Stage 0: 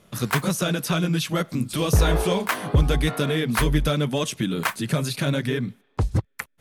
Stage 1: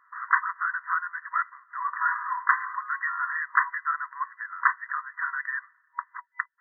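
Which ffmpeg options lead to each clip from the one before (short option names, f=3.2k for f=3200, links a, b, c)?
-af "afftfilt=real='re*between(b*sr/4096,960,2000)':imag='im*between(b*sr/4096,960,2000)':win_size=4096:overlap=0.75,volume=5.5dB"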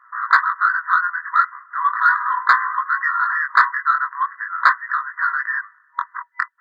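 -filter_complex "[0:a]equalizer=f=1.3k:w=1:g=11,asplit=2[a][b];[b]acontrast=24,volume=-1dB[c];[a][c]amix=inputs=2:normalize=0,flanger=delay=16.5:depth=6.5:speed=0.39,volume=-4.5dB"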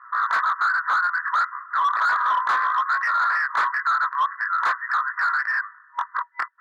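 -filter_complex "[0:a]asplit=2[a][b];[b]acompressor=threshold=-25dB:ratio=6,volume=1dB[c];[a][c]amix=inputs=2:normalize=0,asoftclip=type=hard:threshold=-17dB,bandpass=f=1.1k:t=q:w=1:csg=0"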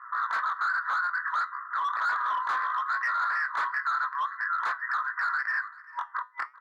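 -af "alimiter=limit=-23.5dB:level=0:latency=1:release=252,flanger=delay=6.5:depth=2.4:regen=80:speed=0.88:shape=sinusoidal,aecho=1:1:391:0.0891,volume=5dB"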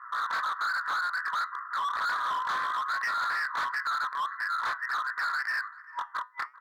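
-af "volume=27dB,asoftclip=hard,volume=-27dB"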